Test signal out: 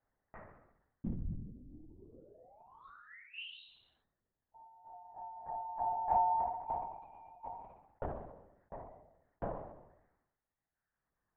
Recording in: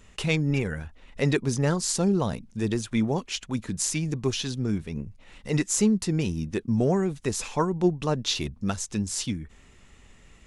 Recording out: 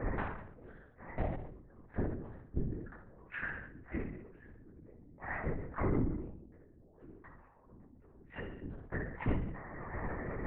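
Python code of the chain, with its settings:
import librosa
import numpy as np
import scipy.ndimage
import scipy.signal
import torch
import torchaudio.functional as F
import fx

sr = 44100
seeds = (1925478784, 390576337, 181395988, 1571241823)

p1 = scipy.signal.sosfilt(scipy.signal.ellip(4, 1.0, 50, 1700.0, 'lowpass', fs=sr, output='sos'), x)
p2 = fx.notch(p1, sr, hz=1300.0, q=5.5)
p3 = fx.dereverb_blind(p2, sr, rt60_s=1.4)
p4 = scipy.signal.sosfilt(scipy.signal.butter(4, 110.0, 'highpass', fs=sr, output='sos'), p3)
p5 = fx.over_compress(p4, sr, threshold_db=-32.0, ratio=-0.5)
p6 = 10.0 ** (-26.0 / 20.0) * np.tanh(p5 / 10.0 ** (-26.0 / 20.0))
p7 = fx.gate_flip(p6, sr, shuts_db=-37.0, range_db=-40)
p8 = p7 * np.sin(2.0 * np.pi * 91.0 * np.arange(len(p7)) / sr)
p9 = p8 + fx.room_flutter(p8, sr, wall_m=11.4, rt60_s=0.58, dry=0)
p10 = fx.room_shoebox(p9, sr, seeds[0], volume_m3=170.0, walls='furnished', distance_m=2.4)
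p11 = fx.lpc_vocoder(p10, sr, seeds[1], excitation='whisper', order=8)
p12 = fx.sustainer(p11, sr, db_per_s=60.0)
y = F.gain(torch.from_numpy(p12), 13.5).numpy()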